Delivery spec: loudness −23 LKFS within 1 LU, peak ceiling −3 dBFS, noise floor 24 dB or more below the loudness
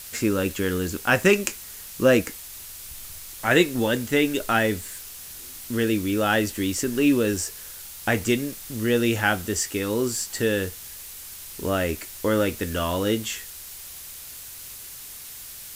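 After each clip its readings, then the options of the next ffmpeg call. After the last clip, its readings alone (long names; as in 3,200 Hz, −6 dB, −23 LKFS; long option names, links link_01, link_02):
background noise floor −40 dBFS; target noise floor −48 dBFS; integrated loudness −24.0 LKFS; sample peak −1.0 dBFS; target loudness −23.0 LKFS
→ -af "afftdn=noise_reduction=8:noise_floor=-40"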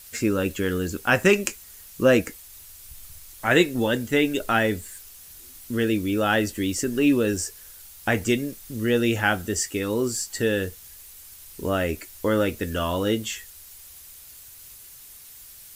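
background noise floor −46 dBFS; target noise floor −48 dBFS
→ -af "afftdn=noise_reduction=6:noise_floor=-46"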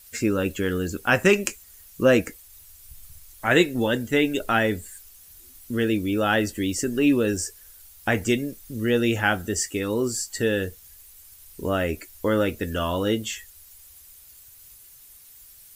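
background noise floor −50 dBFS; integrated loudness −24.0 LKFS; sample peak −2.0 dBFS; target loudness −23.0 LKFS
→ -af "volume=1dB,alimiter=limit=-3dB:level=0:latency=1"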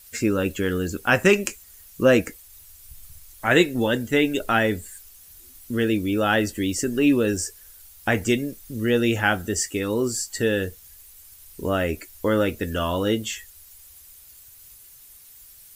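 integrated loudness −23.0 LKFS; sample peak −3.0 dBFS; background noise floor −49 dBFS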